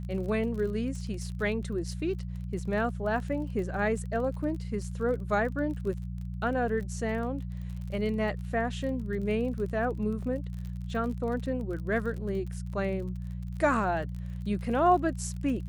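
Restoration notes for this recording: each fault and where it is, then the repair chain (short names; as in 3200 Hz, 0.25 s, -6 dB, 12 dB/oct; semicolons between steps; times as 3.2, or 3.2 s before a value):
crackle 36/s -38 dBFS
hum 60 Hz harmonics 3 -36 dBFS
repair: de-click; de-hum 60 Hz, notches 3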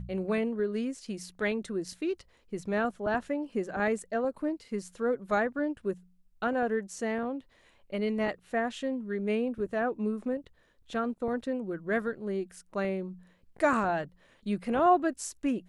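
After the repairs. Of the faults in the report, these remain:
none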